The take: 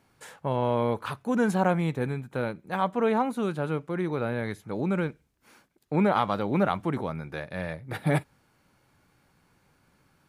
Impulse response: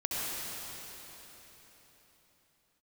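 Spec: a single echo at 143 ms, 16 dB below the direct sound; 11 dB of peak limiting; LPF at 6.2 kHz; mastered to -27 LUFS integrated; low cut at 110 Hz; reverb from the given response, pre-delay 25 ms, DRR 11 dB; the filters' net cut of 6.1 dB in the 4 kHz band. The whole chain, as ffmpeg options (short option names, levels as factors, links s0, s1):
-filter_complex "[0:a]highpass=110,lowpass=6200,equalizer=f=4000:t=o:g=-7.5,alimiter=limit=0.0891:level=0:latency=1,aecho=1:1:143:0.158,asplit=2[s0][s1];[1:a]atrim=start_sample=2205,adelay=25[s2];[s1][s2]afir=irnorm=-1:irlink=0,volume=0.119[s3];[s0][s3]amix=inputs=2:normalize=0,volume=1.78"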